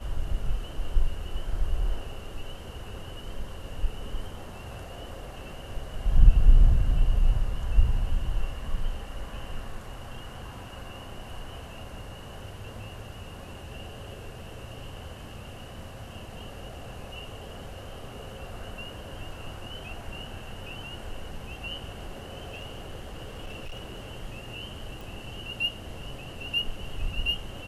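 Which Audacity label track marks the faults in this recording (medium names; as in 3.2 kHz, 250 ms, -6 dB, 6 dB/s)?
22.410000	24.110000	clipped -33 dBFS
25.010000	25.010000	pop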